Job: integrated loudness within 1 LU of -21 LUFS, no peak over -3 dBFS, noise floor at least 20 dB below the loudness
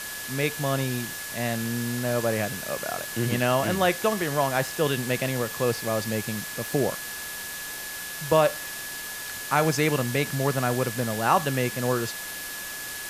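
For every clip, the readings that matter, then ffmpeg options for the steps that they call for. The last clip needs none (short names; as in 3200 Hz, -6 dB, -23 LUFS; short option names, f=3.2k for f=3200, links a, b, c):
steady tone 1700 Hz; tone level -38 dBFS; noise floor -36 dBFS; noise floor target -47 dBFS; loudness -26.5 LUFS; peak -7.0 dBFS; loudness target -21.0 LUFS
-> -af "bandreject=f=1.7k:w=30"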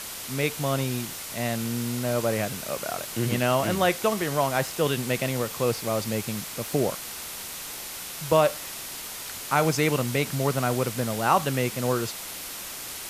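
steady tone none; noise floor -37 dBFS; noise floor target -47 dBFS
-> -af "afftdn=nr=10:nf=-37"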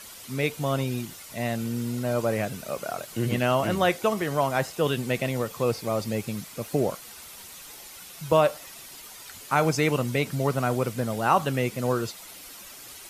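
noise floor -45 dBFS; noise floor target -47 dBFS
-> -af "afftdn=nr=6:nf=-45"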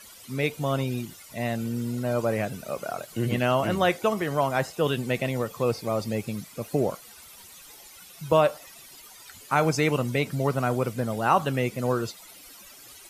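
noise floor -48 dBFS; loudness -26.5 LUFS; peak -7.5 dBFS; loudness target -21.0 LUFS
-> -af "volume=5.5dB,alimiter=limit=-3dB:level=0:latency=1"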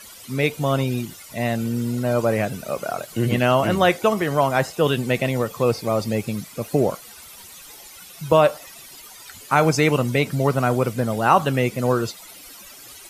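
loudness -21.5 LUFS; peak -3.0 dBFS; noise floor -43 dBFS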